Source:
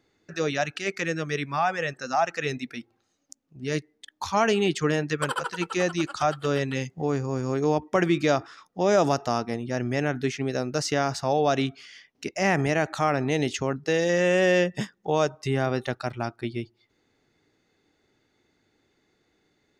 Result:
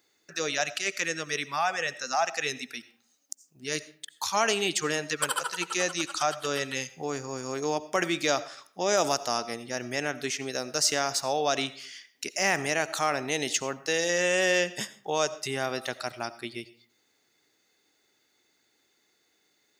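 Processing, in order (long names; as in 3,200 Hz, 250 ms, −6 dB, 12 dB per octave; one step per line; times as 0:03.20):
RIAA equalisation recording
comb and all-pass reverb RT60 0.5 s, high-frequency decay 0.65×, pre-delay 45 ms, DRR 16 dB
level −2.5 dB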